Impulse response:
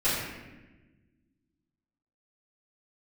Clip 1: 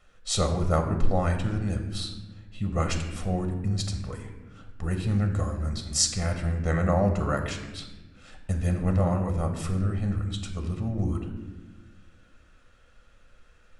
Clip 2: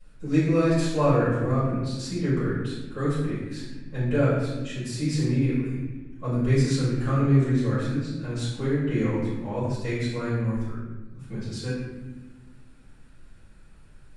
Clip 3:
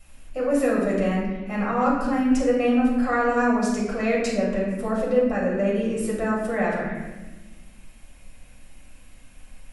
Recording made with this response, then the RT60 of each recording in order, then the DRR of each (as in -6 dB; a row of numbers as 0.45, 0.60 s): 2; 1.2, 1.2, 1.2 s; 4.0, -14.0, -5.5 dB